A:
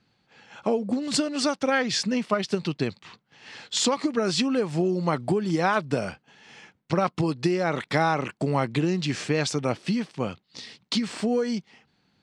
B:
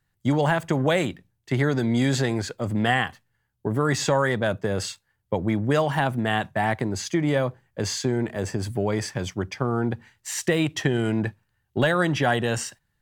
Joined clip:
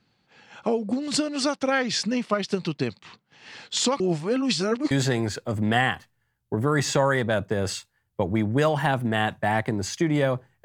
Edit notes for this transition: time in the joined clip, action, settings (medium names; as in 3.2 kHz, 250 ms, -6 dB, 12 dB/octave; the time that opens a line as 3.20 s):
A
4.00–4.91 s: reverse
4.91 s: go over to B from 2.04 s